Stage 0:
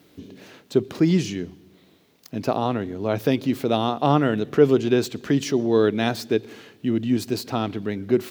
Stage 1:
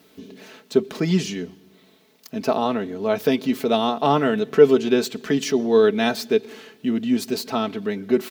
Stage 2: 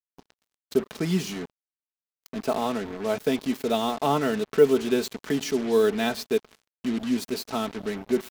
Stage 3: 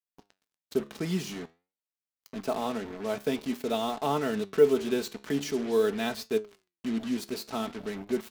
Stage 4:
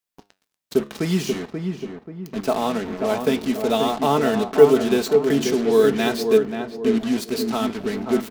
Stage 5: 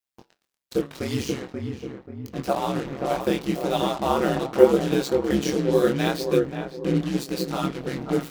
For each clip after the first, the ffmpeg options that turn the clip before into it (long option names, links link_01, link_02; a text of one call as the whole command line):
ffmpeg -i in.wav -af "lowshelf=frequency=190:gain=-8.5,aecho=1:1:4.6:0.62,volume=1.5dB" out.wav
ffmpeg -i in.wav -af "acrusher=bits=4:mix=0:aa=0.5,volume=-5dB" out.wav
ffmpeg -i in.wav -af "flanger=delay=9:depth=5.5:regen=80:speed=0.48:shape=sinusoidal" out.wav
ffmpeg -i in.wav -filter_complex "[0:a]asplit=2[link_01][link_02];[link_02]adelay=534,lowpass=frequency=1300:poles=1,volume=-5dB,asplit=2[link_03][link_04];[link_04]adelay=534,lowpass=frequency=1300:poles=1,volume=0.44,asplit=2[link_05][link_06];[link_06]adelay=534,lowpass=frequency=1300:poles=1,volume=0.44,asplit=2[link_07][link_08];[link_08]adelay=534,lowpass=frequency=1300:poles=1,volume=0.44,asplit=2[link_09][link_10];[link_10]adelay=534,lowpass=frequency=1300:poles=1,volume=0.44[link_11];[link_01][link_03][link_05][link_07][link_09][link_11]amix=inputs=6:normalize=0,volume=8.5dB" out.wav
ffmpeg -i in.wav -af "flanger=delay=19:depth=7.5:speed=0.79,aeval=exprs='val(0)*sin(2*PI*66*n/s)':channel_layout=same,volume=2.5dB" out.wav